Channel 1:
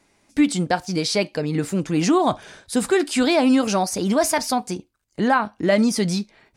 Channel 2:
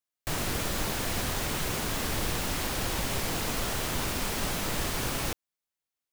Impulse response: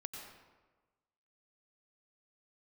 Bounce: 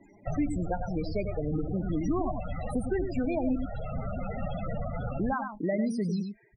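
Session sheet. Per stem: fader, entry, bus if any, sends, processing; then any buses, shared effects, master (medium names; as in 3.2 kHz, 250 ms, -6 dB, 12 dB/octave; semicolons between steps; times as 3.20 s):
-10.5 dB, 0.00 s, muted 3.56–5.19 s, no send, echo send -7.5 dB, treble shelf 9.3 kHz +7.5 dB
-5.5 dB, 0.00 s, send -10.5 dB, no echo send, comb 1.5 ms, depth 51%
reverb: on, RT60 1.3 s, pre-delay 85 ms
echo: delay 98 ms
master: loudest bins only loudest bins 16; peaking EQ 2.9 kHz -4 dB 2.9 oct; three bands compressed up and down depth 70%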